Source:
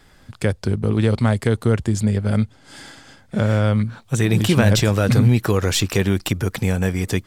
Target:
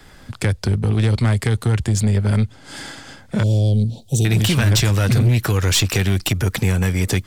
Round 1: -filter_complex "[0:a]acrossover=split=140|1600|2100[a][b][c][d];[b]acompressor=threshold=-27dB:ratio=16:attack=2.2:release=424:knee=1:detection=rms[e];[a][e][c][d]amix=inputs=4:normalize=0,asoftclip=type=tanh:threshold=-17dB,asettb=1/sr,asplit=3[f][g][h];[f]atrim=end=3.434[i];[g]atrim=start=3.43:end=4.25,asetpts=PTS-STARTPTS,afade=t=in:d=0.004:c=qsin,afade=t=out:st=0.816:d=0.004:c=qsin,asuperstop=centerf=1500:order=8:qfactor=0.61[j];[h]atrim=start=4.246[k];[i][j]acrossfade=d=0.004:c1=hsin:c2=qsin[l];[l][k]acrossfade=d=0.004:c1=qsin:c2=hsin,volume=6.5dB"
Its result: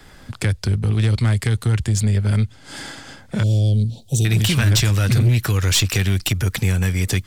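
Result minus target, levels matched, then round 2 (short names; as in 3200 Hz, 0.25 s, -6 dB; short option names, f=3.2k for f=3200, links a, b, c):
compressor: peak gain reduction +5.5 dB
-filter_complex "[0:a]acrossover=split=140|1600|2100[a][b][c][d];[b]acompressor=threshold=-21dB:ratio=16:attack=2.2:release=424:knee=1:detection=rms[e];[a][e][c][d]amix=inputs=4:normalize=0,asoftclip=type=tanh:threshold=-17dB,asettb=1/sr,asplit=3[f][g][h];[f]atrim=end=3.434[i];[g]atrim=start=3.43:end=4.25,asetpts=PTS-STARTPTS,afade=t=in:d=0.004:c=qsin,afade=t=out:st=0.816:d=0.004:c=qsin,asuperstop=centerf=1500:order=8:qfactor=0.61[j];[h]atrim=start=4.246[k];[i][j]acrossfade=d=0.004:c1=hsin:c2=qsin[l];[l][k]acrossfade=d=0.004:c1=qsin:c2=hsin,volume=6.5dB"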